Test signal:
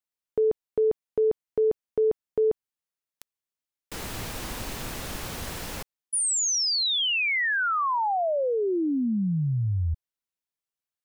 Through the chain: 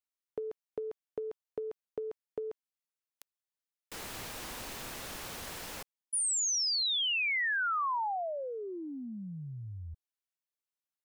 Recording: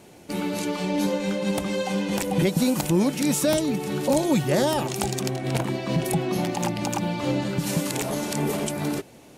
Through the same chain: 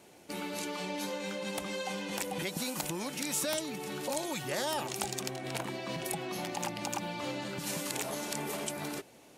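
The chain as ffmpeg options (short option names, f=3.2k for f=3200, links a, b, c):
-filter_complex "[0:a]lowshelf=f=250:g=-9.5,acrossover=split=810[a][b];[a]acompressor=threshold=-39dB:ratio=6:attack=77:release=31:knee=6:detection=peak[c];[c][b]amix=inputs=2:normalize=0,volume=-5.5dB"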